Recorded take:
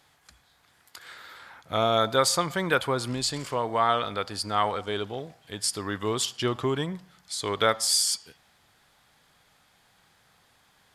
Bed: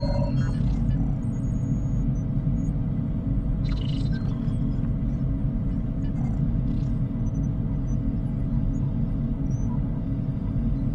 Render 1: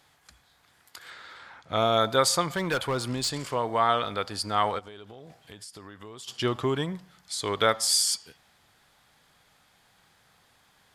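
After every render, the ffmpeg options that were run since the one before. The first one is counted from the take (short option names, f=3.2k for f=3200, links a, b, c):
-filter_complex "[0:a]asettb=1/sr,asplit=3[a][b][c];[a]atrim=end=1.104[d];[b]atrim=start=1.1:end=1.77,asetpts=PTS-STARTPTS,afade=t=in:d=0.004:c=qsin,afade=t=out:st=0.666:d=0.004:c=qsin,lowpass=7.1k[e];[c]atrim=start=1.766[f];[d][e]acrossfade=d=0.004:c1=hsin:c2=qsin[g];[g][f]acrossfade=d=0.004:c1=qsin:c2=hsin,asettb=1/sr,asplit=3[h][i][j];[h]atrim=end=2.534[k];[i]atrim=start=2.53:end=3.53,asetpts=PTS-STARTPTS,afade=t=in:d=0.004:c=qsin,afade=t=out:st=0.996:d=0.004:c=qsin,asoftclip=type=hard:threshold=-22.5dB[l];[j]atrim=start=3.526[m];[k][l]acrossfade=d=0.004:c1=hsin:c2=qsin[n];[n][m]acrossfade=d=0.004:c1=qsin:c2=hsin,asplit=3[o][p][q];[o]afade=t=out:st=4.78:d=0.02[r];[p]acompressor=threshold=-41dB:ratio=8:attack=3.2:release=140:knee=1:detection=peak,afade=t=in:st=4.78:d=0.02,afade=t=out:st=6.27:d=0.02[s];[q]afade=t=in:st=6.27:d=0.02[t];[r][s][t]amix=inputs=3:normalize=0"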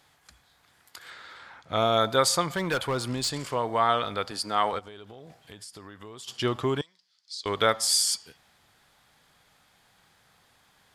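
-filter_complex "[0:a]asettb=1/sr,asplit=3[a][b][c];[a]atrim=end=4.314[d];[b]atrim=start=4.31:end=4.73,asetpts=PTS-STARTPTS,afade=t=in:d=0.004:c=qsin,afade=t=out:st=0.416:d=0.004:c=qsin,highpass=180[e];[c]atrim=start=4.726[f];[d][e]acrossfade=d=0.004:c1=hsin:c2=qsin[g];[g][f]acrossfade=d=0.004:c1=qsin:c2=hsin,asettb=1/sr,asplit=3[h][i][j];[h]atrim=end=6.814[k];[i]atrim=start=6.81:end=7.46,asetpts=PTS-STARTPTS,afade=t=in:d=0.004:c=qsin,afade=t=out:st=0.646:d=0.004:c=qsin,bandpass=f=4.8k:t=q:w=3.7[l];[j]atrim=start=7.456[m];[k][l]acrossfade=d=0.004:c1=hsin:c2=qsin[n];[n][m]acrossfade=d=0.004:c1=qsin:c2=hsin"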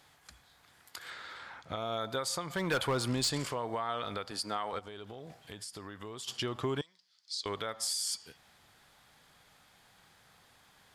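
-af "acompressor=threshold=-26dB:ratio=5,alimiter=limit=-23.5dB:level=0:latency=1:release=420"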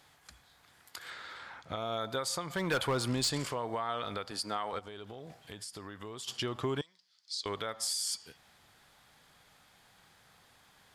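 -af anull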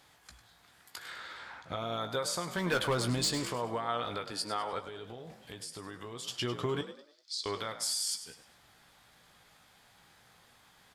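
-filter_complex "[0:a]asplit=2[a][b];[b]adelay=17,volume=-8.5dB[c];[a][c]amix=inputs=2:normalize=0,asplit=2[d][e];[e]asplit=4[f][g][h][i];[f]adelay=101,afreqshift=52,volume=-12dB[j];[g]adelay=202,afreqshift=104,volume=-20.6dB[k];[h]adelay=303,afreqshift=156,volume=-29.3dB[l];[i]adelay=404,afreqshift=208,volume=-37.9dB[m];[j][k][l][m]amix=inputs=4:normalize=0[n];[d][n]amix=inputs=2:normalize=0"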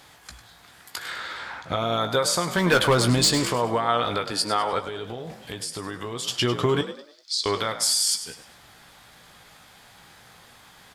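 -af "volume=11dB"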